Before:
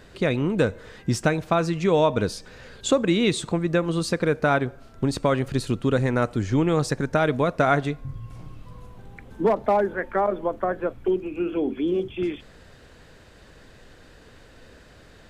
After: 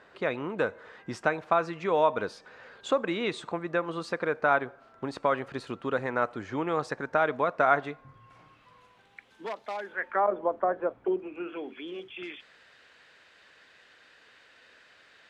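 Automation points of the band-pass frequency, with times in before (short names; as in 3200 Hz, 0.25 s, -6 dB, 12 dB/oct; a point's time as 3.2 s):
band-pass, Q 0.95
7.92 s 1100 Hz
9.74 s 4500 Hz
10.34 s 780 Hz
11.15 s 780 Hz
11.74 s 2300 Hz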